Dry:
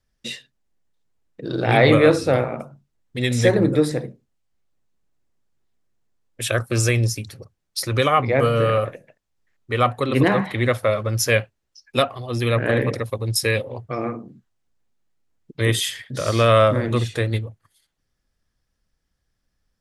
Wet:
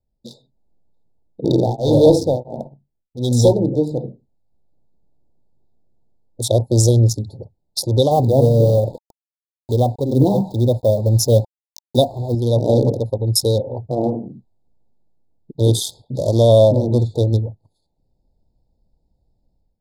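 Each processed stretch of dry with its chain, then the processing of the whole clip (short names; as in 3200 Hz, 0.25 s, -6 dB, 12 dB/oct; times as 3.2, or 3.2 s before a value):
1.44–3.53 sample leveller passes 2 + beating tremolo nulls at 1.5 Hz
8.11–12.35 low shelf 370 Hz +6.5 dB + requantised 6-bit, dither none + mismatched tape noise reduction encoder only
whole clip: Wiener smoothing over 15 samples; Chebyshev band-stop 910–3600 Hz, order 5; AGC; gain -1 dB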